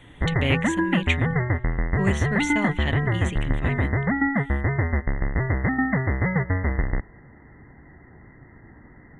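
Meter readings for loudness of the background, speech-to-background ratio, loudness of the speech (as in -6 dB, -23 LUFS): -24.5 LUFS, -5.0 dB, -29.5 LUFS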